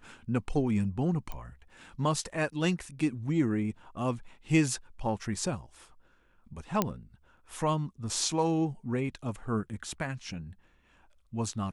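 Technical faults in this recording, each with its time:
0:01.32: click −24 dBFS
0:06.82: click −11 dBFS

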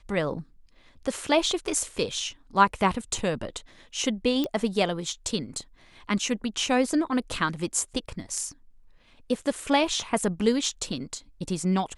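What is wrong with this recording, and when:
0:04.44: click −15 dBFS

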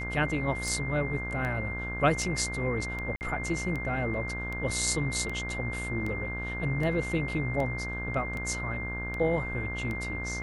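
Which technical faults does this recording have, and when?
mains buzz 60 Hz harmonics 29 −37 dBFS
scratch tick 78 rpm
whistle 2,100 Hz −35 dBFS
0:03.16–0:03.21: drop-out 49 ms

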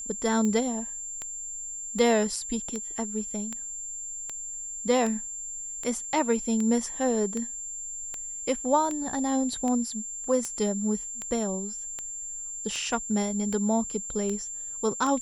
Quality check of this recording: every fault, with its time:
scratch tick 78 rpm −19 dBFS
whistle 7,300 Hz −34 dBFS

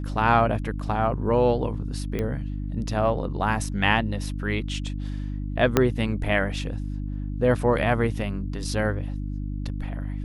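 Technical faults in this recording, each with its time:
mains hum 50 Hz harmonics 6 −30 dBFS
0:02.19: click −16 dBFS
0:05.77: click −4 dBFS

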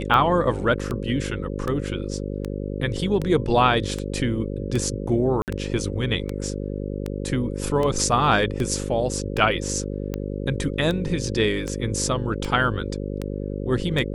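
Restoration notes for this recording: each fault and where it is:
mains buzz 50 Hz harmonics 11 −29 dBFS
scratch tick 78 rpm −14 dBFS
0:05.42–0:05.48: drop-out 58 ms

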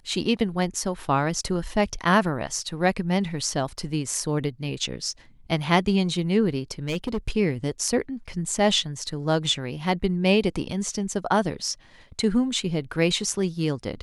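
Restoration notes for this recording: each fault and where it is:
0:06.87–0:07.18: clipping −22 dBFS

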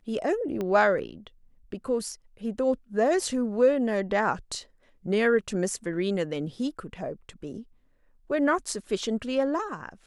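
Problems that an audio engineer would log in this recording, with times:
0:00.61: click −19 dBFS

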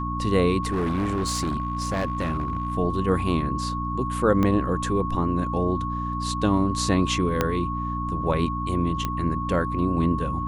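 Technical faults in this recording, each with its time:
mains hum 60 Hz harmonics 5 −30 dBFS
whistle 1,100 Hz −29 dBFS
0:00.62–0:02.75: clipping −21 dBFS
0:04.43: click −12 dBFS
0:07.41: click −7 dBFS
0:09.05: click −12 dBFS

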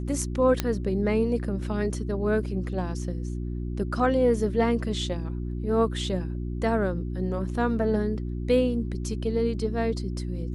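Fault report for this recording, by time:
mains hum 60 Hz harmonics 6 −31 dBFS
0:00.60: click −9 dBFS

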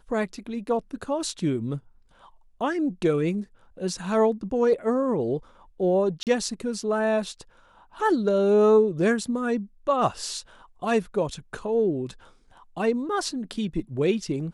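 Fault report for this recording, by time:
0:06.23–0:06.27: drop-out 38 ms

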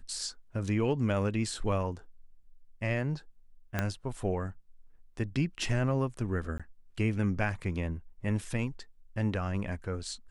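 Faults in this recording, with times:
0:03.79: click −15 dBFS
0:06.58–0:06.60: drop-out 16 ms

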